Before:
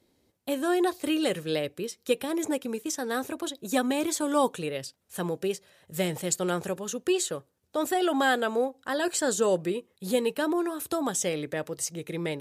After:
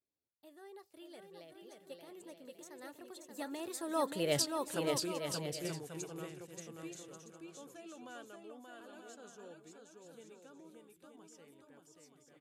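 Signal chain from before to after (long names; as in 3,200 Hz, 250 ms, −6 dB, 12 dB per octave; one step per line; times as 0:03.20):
source passing by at 0:04.42, 32 m/s, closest 1.9 metres
bouncing-ball delay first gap 580 ms, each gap 0.6×, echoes 5
level +8 dB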